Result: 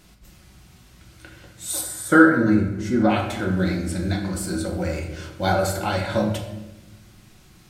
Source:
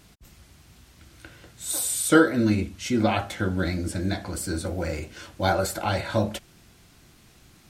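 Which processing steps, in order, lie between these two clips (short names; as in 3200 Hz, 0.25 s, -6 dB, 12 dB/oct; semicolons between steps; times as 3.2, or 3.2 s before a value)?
1.81–3.1 resonant high shelf 2100 Hz -7 dB, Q 3; shoebox room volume 440 m³, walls mixed, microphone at 1 m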